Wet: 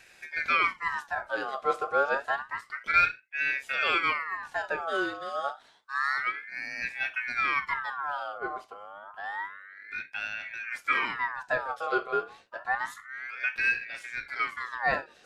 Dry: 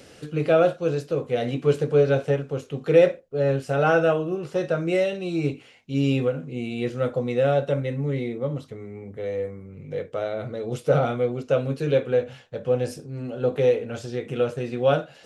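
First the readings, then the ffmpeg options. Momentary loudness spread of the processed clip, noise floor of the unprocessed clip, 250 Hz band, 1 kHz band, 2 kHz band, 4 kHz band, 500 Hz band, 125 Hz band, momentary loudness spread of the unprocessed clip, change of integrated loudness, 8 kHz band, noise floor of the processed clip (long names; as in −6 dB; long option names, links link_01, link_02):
12 LU, −50 dBFS, −18.5 dB, +2.5 dB, +7.5 dB, 0.0 dB, −15.5 dB, −29.0 dB, 12 LU, −5.5 dB, can't be measured, −58 dBFS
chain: -af "aeval=exprs='val(0)*sin(2*PI*1500*n/s+1500*0.4/0.29*sin(2*PI*0.29*n/s))':channel_layout=same,volume=-4.5dB"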